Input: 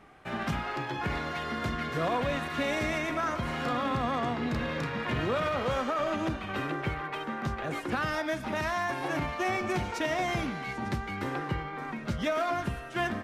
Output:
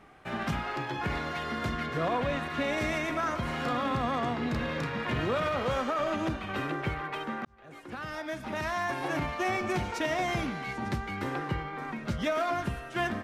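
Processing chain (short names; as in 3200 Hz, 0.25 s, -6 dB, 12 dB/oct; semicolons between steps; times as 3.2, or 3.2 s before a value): 1.86–2.78 high shelf 5600 Hz -7 dB; 7.45–8.91 fade in linear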